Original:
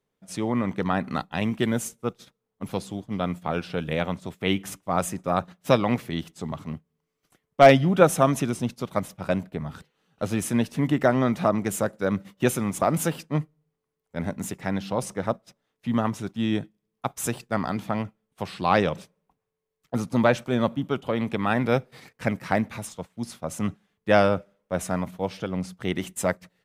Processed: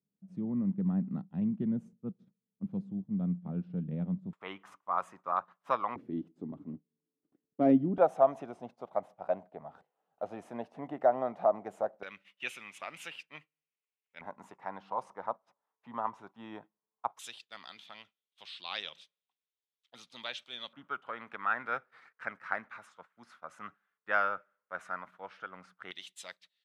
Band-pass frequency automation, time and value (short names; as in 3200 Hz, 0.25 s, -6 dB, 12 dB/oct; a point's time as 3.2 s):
band-pass, Q 3.8
190 Hz
from 4.33 s 1100 Hz
from 5.96 s 290 Hz
from 7.98 s 720 Hz
from 12.03 s 2600 Hz
from 14.21 s 950 Hz
from 17.19 s 3500 Hz
from 20.73 s 1400 Hz
from 25.91 s 3700 Hz